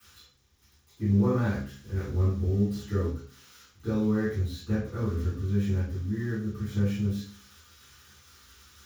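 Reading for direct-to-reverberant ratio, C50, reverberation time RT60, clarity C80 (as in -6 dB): -15.0 dB, 1.5 dB, 0.45 s, 7.5 dB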